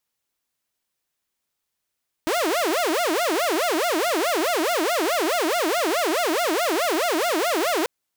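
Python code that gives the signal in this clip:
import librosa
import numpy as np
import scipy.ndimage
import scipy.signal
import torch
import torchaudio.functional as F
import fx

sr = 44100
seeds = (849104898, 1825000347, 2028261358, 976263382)

y = fx.siren(sr, length_s=5.59, kind='wail', low_hz=307.0, high_hz=715.0, per_s=4.7, wave='saw', level_db=-17.5)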